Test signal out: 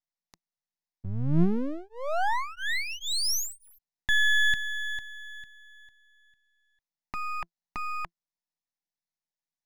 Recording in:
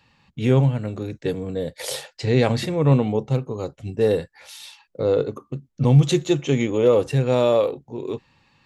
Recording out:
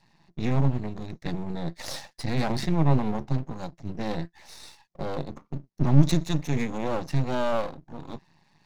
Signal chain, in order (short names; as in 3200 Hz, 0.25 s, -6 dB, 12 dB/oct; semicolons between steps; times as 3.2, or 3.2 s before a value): in parallel at -2.5 dB: limiter -12 dBFS; on the sum: speaker cabinet 150–6600 Hz, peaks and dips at 170 Hz +9 dB, 410 Hz -10 dB, 1200 Hz -9 dB, 2400 Hz -10 dB, 4600 Hz -4 dB; fixed phaser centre 2100 Hz, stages 8; half-wave rectifier